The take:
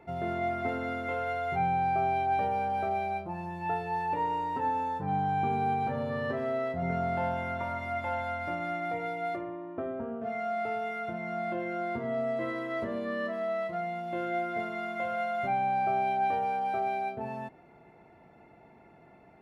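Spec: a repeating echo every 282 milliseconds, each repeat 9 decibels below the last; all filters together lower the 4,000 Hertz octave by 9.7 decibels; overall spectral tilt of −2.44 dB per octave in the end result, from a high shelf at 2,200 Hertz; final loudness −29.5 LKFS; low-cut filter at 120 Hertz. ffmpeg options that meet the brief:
ffmpeg -i in.wav -af "highpass=120,highshelf=frequency=2200:gain=-6,equalizer=frequency=4000:width_type=o:gain=-8,aecho=1:1:282|564|846|1128:0.355|0.124|0.0435|0.0152,volume=3dB" out.wav

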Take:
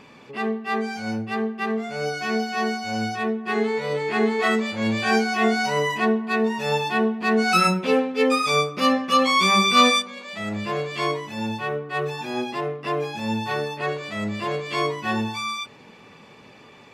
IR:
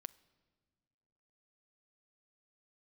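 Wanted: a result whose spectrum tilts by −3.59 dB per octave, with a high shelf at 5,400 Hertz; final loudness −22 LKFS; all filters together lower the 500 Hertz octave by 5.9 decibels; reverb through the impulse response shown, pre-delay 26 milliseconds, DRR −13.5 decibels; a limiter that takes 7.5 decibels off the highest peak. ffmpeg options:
-filter_complex "[0:a]equalizer=frequency=500:width_type=o:gain=-7,highshelf=frequency=5400:gain=5,alimiter=limit=-12.5dB:level=0:latency=1,asplit=2[link_01][link_02];[1:a]atrim=start_sample=2205,adelay=26[link_03];[link_02][link_03]afir=irnorm=-1:irlink=0,volume=19dB[link_04];[link_01][link_04]amix=inputs=2:normalize=0,volume=-10.5dB"

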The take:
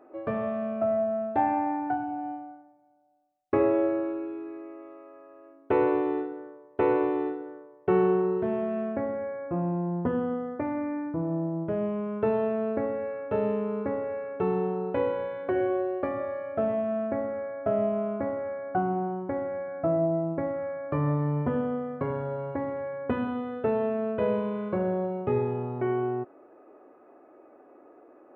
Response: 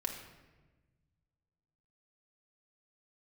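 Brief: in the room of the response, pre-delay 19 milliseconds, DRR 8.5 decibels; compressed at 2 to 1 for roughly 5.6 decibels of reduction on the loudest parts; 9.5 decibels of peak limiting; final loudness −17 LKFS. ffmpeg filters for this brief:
-filter_complex "[0:a]acompressor=threshold=-29dB:ratio=2,alimiter=level_in=2dB:limit=-24dB:level=0:latency=1,volume=-2dB,asplit=2[link_01][link_02];[1:a]atrim=start_sample=2205,adelay=19[link_03];[link_02][link_03]afir=irnorm=-1:irlink=0,volume=-10dB[link_04];[link_01][link_04]amix=inputs=2:normalize=0,volume=17dB"

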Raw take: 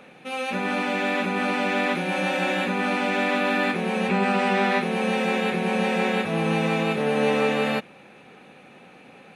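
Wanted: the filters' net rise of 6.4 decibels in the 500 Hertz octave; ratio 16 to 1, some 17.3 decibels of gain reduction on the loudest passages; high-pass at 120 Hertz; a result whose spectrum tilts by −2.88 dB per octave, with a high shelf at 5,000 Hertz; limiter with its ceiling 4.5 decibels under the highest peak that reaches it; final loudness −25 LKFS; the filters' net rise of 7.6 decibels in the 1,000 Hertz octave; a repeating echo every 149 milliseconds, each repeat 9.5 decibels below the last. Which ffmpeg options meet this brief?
ffmpeg -i in.wav -af "highpass=120,equalizer=frequency=500:width_type=o:gain=5.5,equalizer=frequency=1000:width_type=o:gain=8,highshelf=frequency=5000:gain=5,acompressor=threshold=-30dB:ratio=16,alimiter=level_in=2dB:limit=-24dB:level=0:latency=1,volume=-2dB,aecho=1:1:149|298|447|596:0.335|0.111|0.0365|0.012,volume=10dB" out.wav

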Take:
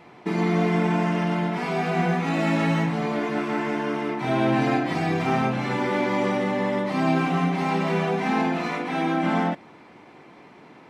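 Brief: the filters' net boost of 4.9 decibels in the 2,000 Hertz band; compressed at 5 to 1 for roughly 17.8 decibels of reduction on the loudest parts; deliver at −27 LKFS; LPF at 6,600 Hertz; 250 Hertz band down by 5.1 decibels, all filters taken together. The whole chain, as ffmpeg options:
ffmpeg -i in.wav -af "lowpass=6600,equalizer=frequency=250:width_type=o:gain=-7.5,equalizer=frequency=2000:width_type=o:gain=6,acompressor=threshold=-41dB:ratio=5,volume=14.5dB" out.wav

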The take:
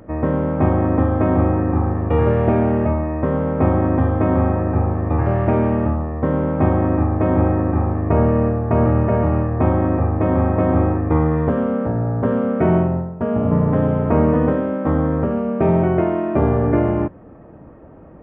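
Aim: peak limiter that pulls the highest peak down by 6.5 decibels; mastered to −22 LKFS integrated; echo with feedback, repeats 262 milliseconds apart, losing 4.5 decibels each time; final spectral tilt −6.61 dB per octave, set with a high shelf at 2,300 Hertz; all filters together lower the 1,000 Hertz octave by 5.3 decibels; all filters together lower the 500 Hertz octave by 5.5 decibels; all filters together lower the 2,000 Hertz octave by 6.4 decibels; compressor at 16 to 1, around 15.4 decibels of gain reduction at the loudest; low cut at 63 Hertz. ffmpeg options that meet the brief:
ffmpeg -i in.wav -af "highpass=63,equalizer=frequency=500:width_type=o:gain=-6,equalizer=frequency=1000:width_type=o:gain=-3.5,equalizer=frequency=2000:width_type=o:gain=-8.5,highshelf=frequency=2300:gain=4,acompressor=threshold=-29dB:ratio=16,alimiter=level_in=2.5dB:limit=-24dB:level=0:latency=1,volume=-2.5dB,aecho=1:1:262|524|786|1048|1310|1572|1834|2096|2358:0.596|0.357|0.214|0.129|0.0772|0.0463|0.0278|0.0167|0.01,volume=12dB" out.wav

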